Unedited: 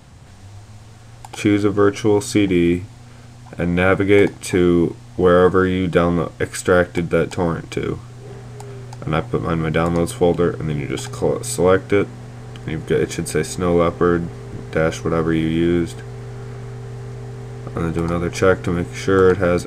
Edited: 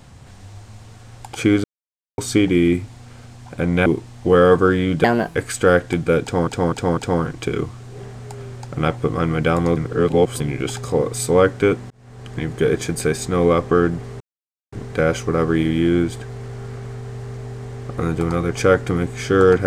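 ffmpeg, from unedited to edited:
-filter_complex "[0:a]asplit=13[a][b][c][d][e][f][g][h][i][j][k][l][m];[a]atrim=end=1.64,asetpts=PTS-STARTPTS,afade=t=out:st=1.636:d=0.004:c=hsin[n];[b]atrim=start=1.64:end=2.18,asetpts=PTS-STARTPTS,volume=0[o];[c]atrim=start=2.18:end=3.862,asetpts=PTS-STARTPTS,afade=t=in:d=0.004:c=hsin[p];[d]atrim=start=4.788:end=5.974[q];[e]atrim=start=5.97:end=6.4,asetpts=PTS-STARTPTS,asetrate=60417,aresample=44100[r];[f]atrim=start=6.396:end=7.522[s];[g]atrim=start=7.268:end=7.522[t];[h]atrim=start=7.268:end=7.522[u];[i]atrim=start=7.268:end=10.062[v];[j]atrim=start=10.058:end=10.702,asetpts=PTS-STARTPTS,areverse[w];[k]atrim=start=10.698:end=12.2,asetpts=PTS-STARTPTS,afade=t=out:st=1.498:d=0.004:c=hsin[x];[l]atrim=start=12.2:end=14.5,asetpts=PTS-STARTPTS,afade=t=in:d=0.44,afade=t=out:st=2.296:d=0.004:c=hsin,apad=pad_dur=0.52[y];[m]atrim=start=14.5,asetpts=PTS-STARTPTS,afade=t=in:d=0.004:c=hsin[z];[n][o][p]concat=n=3:v=0:a=1[aa];[aa][q]acrossfade=d=0.004:c1=hsin:c2=hsin[ab];[ab][r]acrossfade=d=0.004:c1=hsin:c2=hsin[ac];[ac][s]acrossfade=d=0.004:c1=hsin:c2=hsin[ad];[ad][t]acrossfade=d=0.004:c1=hsin:c2=hsin[ae];[ae][u]acrossfade=d=0.004:c1=hsin:c2=hsin[af];[af][v]acrossfade=d=0.004:c1=hsin:c2=hsin[ag];[ag][w]acrossfade=d=0.004:c1=hsin:c2=hsin[ah];[x][y][z]concat=n=3:v=0:a=1[ai];[ah][ai]acrossfade=d=0.004:c1=hsin:c2=hsin"

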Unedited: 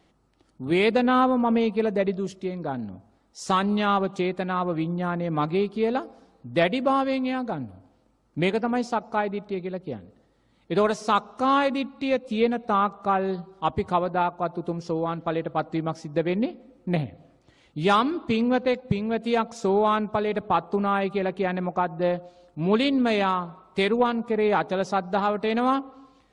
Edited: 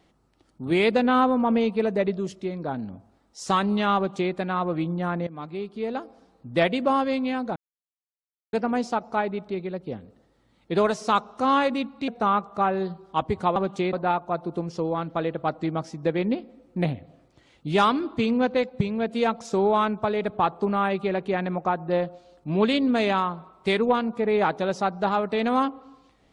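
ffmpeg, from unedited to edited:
-filter_complex "[0:a]asplit=7[a][b][c][d][e][f][g];[a]atrim=end=5.27,asetpts=PTS-STARTPTS,afade=t=out:st=5.266:d=0.004:c=hsin:silence=0.16788[h];[b]atrim=start=5.27:end=7.56,asetpts=PTS-STARTPTS,afade=t=in:d=1.32:silence=0.16788,afade=t=out:st=2.286:d=0.004:c=hsin[i];[c]atrim=start=7.56:end=8.53,asetpts=PTS-STARTPTS,volume=0[j];[d]atrim=start=8.53:end=12.082,asetpts=PTS-STARTPTS,afade=t=in:d=0.004:c=hsin[k];[e]atrim=start=12.558:end=14.042[l];[f]atrim=start=3.958:end=4.332[m];[g]atrim=start=14.038[n];[h][i][j][k]concat=n=4:v=0:a=1[o];[o][l]acrossfade=d=0.004:c1=hsin:c2=hsin[p];[p][m]acrossfade=d=0.004:c1=hsin:c2=hsin[q];[q][n]acrossfade=d=0.004:c1=hsin:c2=hsin"

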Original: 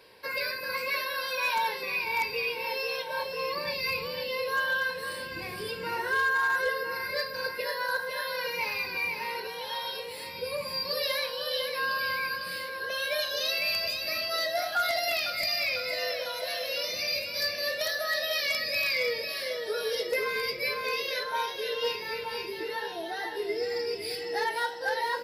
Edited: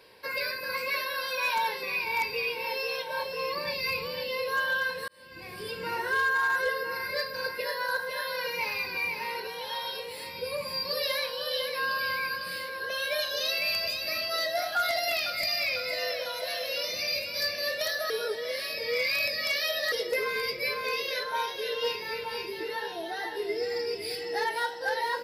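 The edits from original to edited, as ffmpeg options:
-filter_complex "[0:a]asplit=4[a][b][c][d];[a]atrim=end=5.08,asetpts=PTS-STARTPTS,afade=t=out:st=5.076:d=0.004:c=hsin[e];[b]atrim=start=5.08:end=18.102,asetpts=PTS-STARTPTS,afade=t=in:d=0.73[f];[c]atrim=start=18.098:end=19.922,asetpts=PTS-STARTPTS,areverse[g];[d]atrim=start=19.918[h];[e][f]concat=n=2:v=0:a=1[i];[i][g]acrossfade=d=0.004:c1=hsin:c2=hsin[j];[j][h]acrossfade=d=0.004:c1=hsin:c2=hsin"

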